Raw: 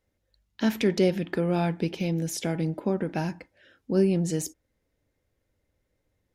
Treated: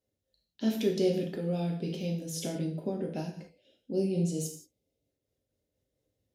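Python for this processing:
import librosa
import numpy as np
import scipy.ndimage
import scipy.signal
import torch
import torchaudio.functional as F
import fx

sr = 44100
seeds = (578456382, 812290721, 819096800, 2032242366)

y = scipy.signal.sosfilt(scipy.signal.butter(2, 81.0, 'highpass', fs=sr, output='sos'), x)
y = fx.band_shelf(y, sr, hz=1400.0, db=-9.5, octaves=1.7)
y = fx.rev_gated(y, sr, seeds[0], gate_ms=210, shape='falling', drr_db=0.5)
y = fx.spec_box(y, sr, start_s=3.5, length_s=1.59, low_hz=940.0, high_hz=2000.0, gain_db=-14)
y = fx.am_noise(y, sr, seeds[1], hz=5.7, depth_pct=55)
y = F.gain(torch.from_numpy(y), -4.5).numpy()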